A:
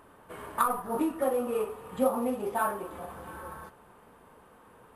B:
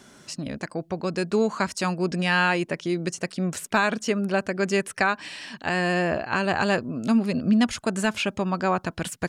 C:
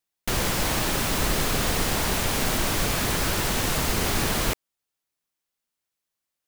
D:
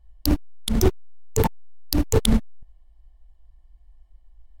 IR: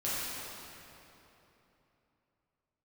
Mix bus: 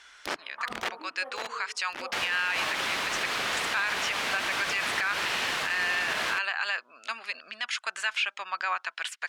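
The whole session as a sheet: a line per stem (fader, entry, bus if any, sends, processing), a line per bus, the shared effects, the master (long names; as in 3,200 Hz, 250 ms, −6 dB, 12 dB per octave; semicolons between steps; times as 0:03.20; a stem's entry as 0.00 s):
−11.5 dB, 0.00 s, no send, low-pass filter 2,200 Hz 6 dB per octave
+2.0 dB, 0.00 s, no send, high-pass filter 1,300 Hz 12 dB per octave
−2.5 dB, 1.85 s, no send, no processing
−0.5 dB, 0.00 s, no send, wrap-around overflow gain 13 dB; automatic ducking −17 dB, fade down 1.60 s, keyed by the second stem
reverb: not used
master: resonant band-pass 1,700 Hz, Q 0.58; parametric band 2,600 Hz +4.5 dB 2.2 octaves; brickwall limiter −18 dBFS, peak gain reduction 11 dB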